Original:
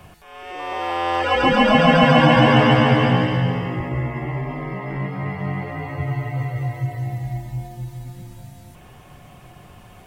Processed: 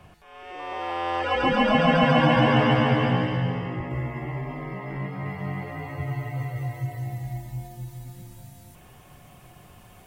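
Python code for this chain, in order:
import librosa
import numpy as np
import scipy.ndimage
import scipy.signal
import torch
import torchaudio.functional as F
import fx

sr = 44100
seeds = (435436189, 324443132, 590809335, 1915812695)

y = fx.high_shelf(x, sr, hz=7100.0, db=fx.steps((0.0, -8.0), (3.89, 3.5), (5.24, 8.5)))
y = F.gain(torch.from_numpy(y), -5.5).numpy()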